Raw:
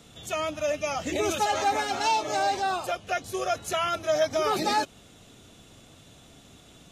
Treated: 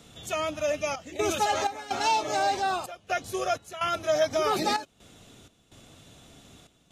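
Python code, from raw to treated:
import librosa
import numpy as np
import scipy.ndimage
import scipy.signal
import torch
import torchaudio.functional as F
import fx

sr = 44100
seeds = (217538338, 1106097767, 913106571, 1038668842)

y = fx.step_gate(x, sr, bpm=63, pattern='xxxx.xx.', floor_db=-12.0, edge_ms=4.5)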